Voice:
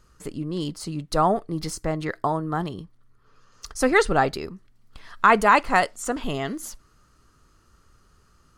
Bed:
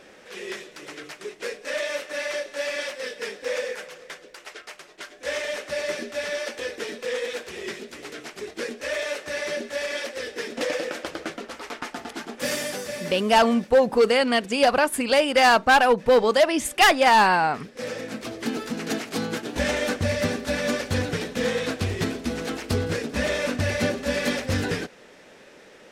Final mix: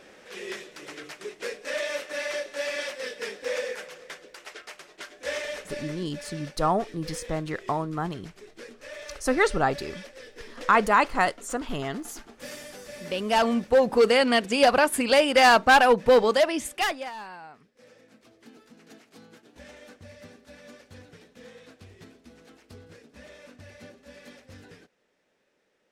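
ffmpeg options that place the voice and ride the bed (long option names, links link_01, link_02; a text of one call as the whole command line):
ffmpeg -i stem1.wav -i stem2.wav -filter_complex "[0:a]adelay=5450,volume=-3.5dB[link_01];[1:a]volume=11dB,afade=type=out:start_time=5.26:duration=0.71:silence=0.281838,afade=type=in:start_time=12.7:duration=1.47:silence=0.223872,afade=type=out:start_time=16.1:duration=1.02:silence=0.0707946[link_02];[link_01][link_02]amix=inputs=2:normalize=0" out.wav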